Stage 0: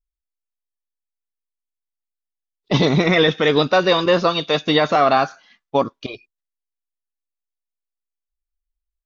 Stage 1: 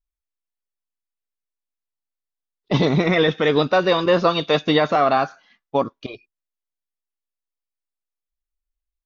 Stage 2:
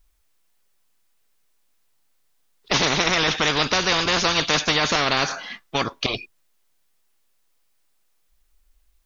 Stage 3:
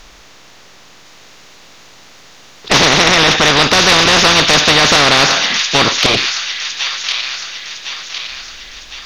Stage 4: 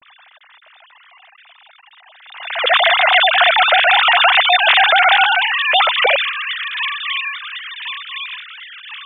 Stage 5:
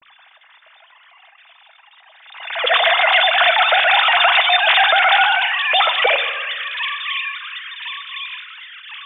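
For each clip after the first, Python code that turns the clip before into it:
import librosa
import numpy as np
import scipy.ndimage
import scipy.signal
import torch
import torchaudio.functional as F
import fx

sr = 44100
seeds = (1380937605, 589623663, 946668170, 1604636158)

y1 = fx.high_shelf(x, sr, hz=3600.0, db=-7.0)
y1 = fx.rider(y1, sr, range_db=10, speed_s=0.5)
y2 = fx.spectral_comp(y1, sr, ratio=4.0)
y3 = fx.bin_compress(y2, sr, power=0.6)
y3 = fx.echo_wet_highpass(y3, sr, ms=1058, feedback_pct=49, hz=2100.0, wet_db=-4.5)
y3 = fx.fold_sine(y3, sr, drive_db=6, ceiling_db=-0.5)
y3 = F.gain(torch.from_numpy(y3), -1.0).numpy()
y4 = fx.sine_speech(y3, sr)
y4 = fx.pre_swell(y4, sr, db_per_s=66.0)
y4 = F.gain(torch.from_numpy(y4), -2.5).numpy()
y5 = fx.room_shoebox(y4, sr, seeds[0], volume_m3=980.0, walls='mixed', distance_m=0.66)
y5 = F.gain(torch.from_numpy(y5), -2.5).numpy()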